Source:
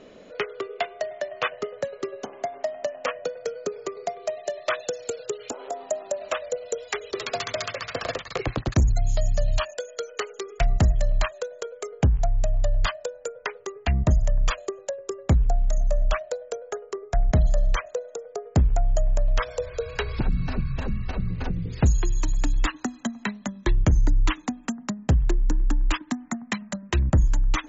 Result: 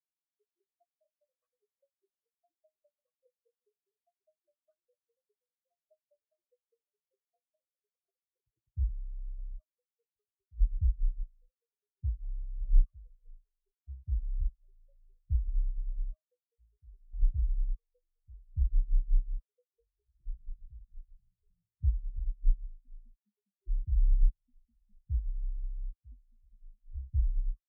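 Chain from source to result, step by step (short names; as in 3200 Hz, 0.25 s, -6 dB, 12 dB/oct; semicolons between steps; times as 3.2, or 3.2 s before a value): echoes that change speed 85 ms, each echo -3 st, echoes 2, each echo -6 dB; spectral expander 4:1; gain -3.5 dB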